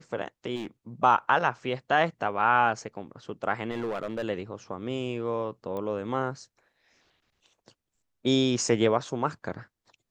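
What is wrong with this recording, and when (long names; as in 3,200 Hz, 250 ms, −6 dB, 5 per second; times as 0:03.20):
0:00.55–0:00.67: clipping −30.5 dBFS
0:03.71–0:04.24: clipping −27 dBFS
0:05.77: click −24 dBFS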